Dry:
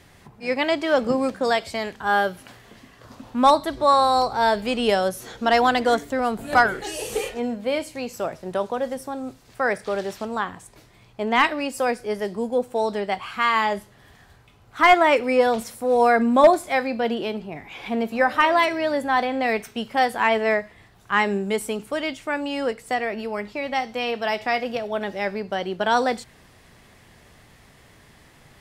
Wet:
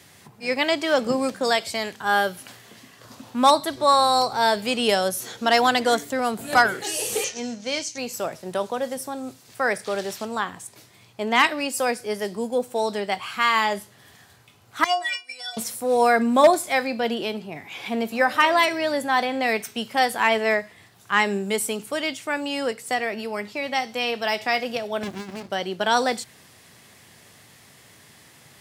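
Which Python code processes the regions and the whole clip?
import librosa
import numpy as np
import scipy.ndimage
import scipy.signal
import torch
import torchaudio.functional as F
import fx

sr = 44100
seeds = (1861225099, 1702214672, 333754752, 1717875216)

y = fx.chain(x, sr, fx.law_mismatch(coded='A'),
    fx.lowpass_res(hz=6100.0, q=6.7),
    fx.peak_eq(hz=600.0, db=-5.0, octaves=2.0), at=(7.24, 7.98))
y = fx.chain(y, sr, fx.weighting(curve='ITU-R 468'),
    fx.transient(attack_db=7, sustain_db=-7),
    fx.stiff_resonator(f0_hz=350.0, decay_s=0.31, stiffness=0.008), at=(14.84, 15.57))
y = fx.chain(y, sr, fx.comb(ms=3.0, depth=0.52),
    fx.over_compress(threshold_db=-27.0, ratio=-0.5),
    fx.running_max(window=65), at=(25.03, 25.5))
y = scipy.signal.sosfilt(scipy.signal.butter(4, 91.0, 'highpass', fs=sr, output='sos'), y)
y = fx.high_shelf(y, sr, hz=3300.0, db=10.5)
y = F.gain(torch.from_numpy(y), -1.5).numpy()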